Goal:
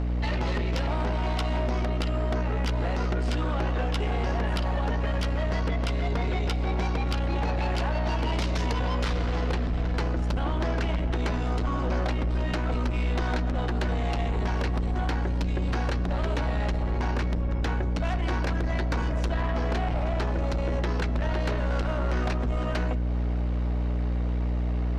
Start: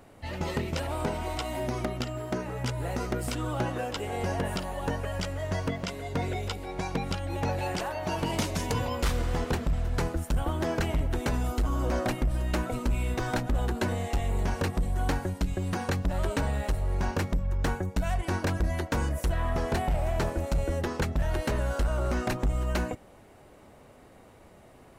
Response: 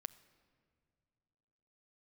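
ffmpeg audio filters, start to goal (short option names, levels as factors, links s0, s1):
-filter_complex "[0:a]lowpass=f=5100:w=0.5412,lowpass=f=5100:w=1.3066,equalizer=f=68:t=o:w=2.8:g=-14,acompressor=threshold=0.00631:ratio=3,aeval=exprs='val(0)+0.0126*(sin(2*PI*60*n/s)+sin(2*PI*2*60*n/s)/2+sin(2*PI*3*60*n/s)/3+sin(2*PI*4*60*n/s)/4+sin(2*PI*5*60*n/s)/5)':c=same,asoftclip=type=tanh:threshold=0.0119,asplit=2[s0][s1];[1:a]atrim=start_sample=2205,asetrate=25578,aresample=44100[s2];[s1][s2]afir=irnorm=-1:irlink=0,volume=6.31[s3];[s0][s3]amix=inputs=2:normalize=0"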